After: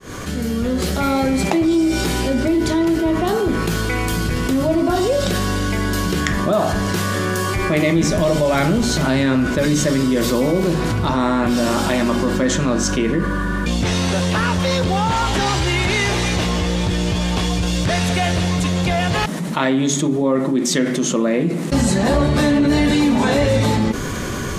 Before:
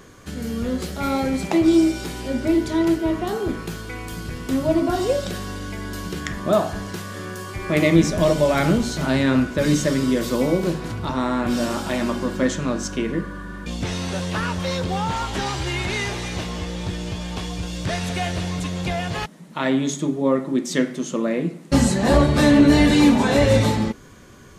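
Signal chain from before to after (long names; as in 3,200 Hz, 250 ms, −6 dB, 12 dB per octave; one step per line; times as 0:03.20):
fade in at the beginning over 1.28 s
in parallel at −12 dB: soft clipping −12 dBFS, distortion −15 dB
on the sum: envelope flattener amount 70%
level −5 dB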